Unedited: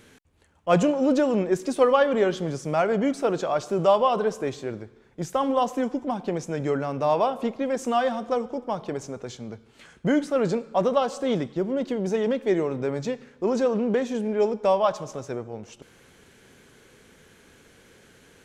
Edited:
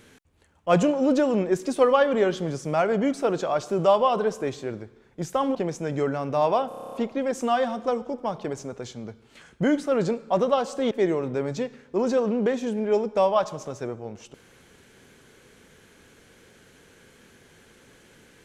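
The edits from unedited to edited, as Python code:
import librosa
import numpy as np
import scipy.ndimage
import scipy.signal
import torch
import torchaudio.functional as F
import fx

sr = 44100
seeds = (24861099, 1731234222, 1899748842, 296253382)

y = fx.edit(x, sr, fx.cut(start_s=5.55, length_s=0.68),
    fx.stutter(start_s=7.36, slice_s=0.03, count=9),
    fx.cut(start_s=11.35, length_s=1.04), tone=tone)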